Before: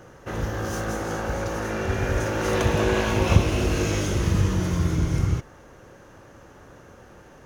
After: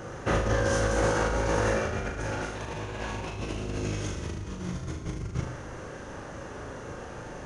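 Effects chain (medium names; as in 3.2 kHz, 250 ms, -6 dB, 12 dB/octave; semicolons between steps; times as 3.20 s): peak limiter -15 dBFS, peak gain reduction 11 dB; compressor with a negative ratio -30 dBFS, ratio -0.5; flutter echo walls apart 6.6 m, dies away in 0.47 s; on a send at -13 dB: reverberation RT60 1.1 s, pre-delay 88 ms; on the sum: resampled via 22.05 kHz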